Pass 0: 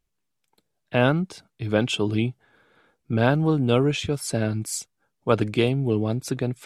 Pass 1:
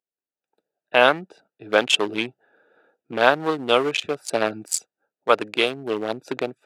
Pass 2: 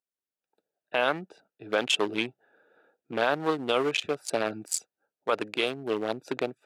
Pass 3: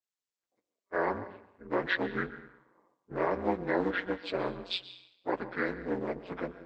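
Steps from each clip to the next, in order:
adaptive Wiener filter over 41 samples; high-pass filter 680 Hz 12 dB per octave; automatic gain control gain up to 15 dB
brickwall limiter −9.5 dBFS, peak gain reduction 8 dB; level −3.5 dB
partials spread apart or drawn together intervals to 78%; dense smooth reverb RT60 0.8 s, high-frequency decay 0.95×, pre-delay 110 ms, DRR 13.5 dB; ring modulation 92 Hz

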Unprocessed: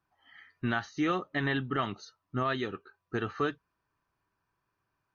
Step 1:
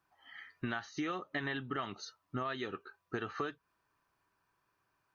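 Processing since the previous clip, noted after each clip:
low-shelf EQ 250 Hz −7.5 dB
downward compressor 6 to 1, threshold −38 dBFS, peak gain reduction 11.5 dB
level +3.5 dB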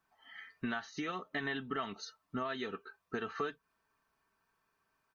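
comb filter 4.5 ms, depth 50%
level −1 dB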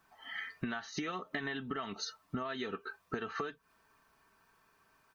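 downward compressor 8 to 1, threshold −45 dBFS, peak gain reduction 13.5 dB
level +10 dB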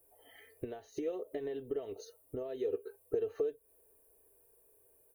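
drawn EQ curve 100 Hz 0 dB, 200 Hz −21 dB, 290 Hz −3 dB, 490 Hz +11 dB, 770 Hz −9 dB, 1,300 Hz −25 dB, 2,500 Hz −15 dB, 5,300 Hz −19 dB, 10,000 Hz +13 dB
level +1 dB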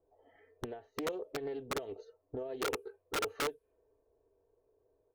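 low-pass that shuts in the quiet parts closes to 960 Hz, open at −30.5 dBFS
wrap-around overflow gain 28.5 dB
highs frequency-modulated by the lows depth 0.32 ms

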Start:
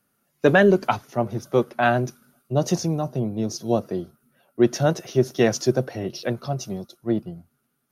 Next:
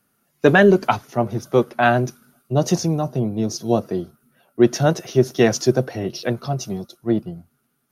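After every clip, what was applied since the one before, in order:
notch filter 560 Hz, Q 16
level +3.5 dB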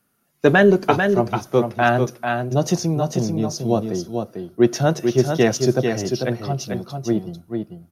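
single-tap delay 444 ms −5.5 dB
on a send at −20 dB: convolution reverb RT60 0.40 s, pre-delay 6 ms
on the sum: level −1 dB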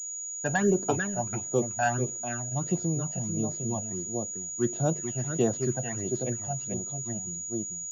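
all-pass phaser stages 12, 1.5 Hz, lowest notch 360–2,300 Hz
switching amplifier with a slow clock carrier 6,800 Hz
level −8.5 dB

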